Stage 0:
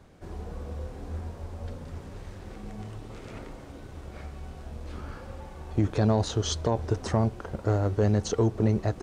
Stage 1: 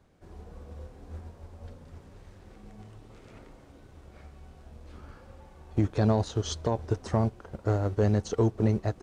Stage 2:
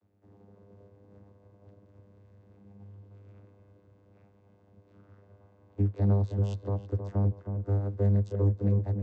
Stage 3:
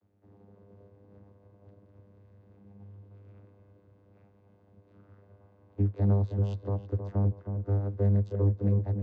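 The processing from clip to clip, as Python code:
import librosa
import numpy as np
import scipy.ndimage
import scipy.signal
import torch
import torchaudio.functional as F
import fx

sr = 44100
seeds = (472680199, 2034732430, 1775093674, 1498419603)

y1 = fx.upward_expand(x, sr, threshold_db=-38.0, expansion=1.5)
y2 = fx.vocoder(y1, sr, bands=16, carrier='saw', carrier_hz=100.0)
y2 = fx.echo_filtered(y2, sr, ms=318, feedback_pct=34, hz=1500.0, wet_db=-7.0)
y3 = fx.air_absorb(y2, sr, metres=110.0)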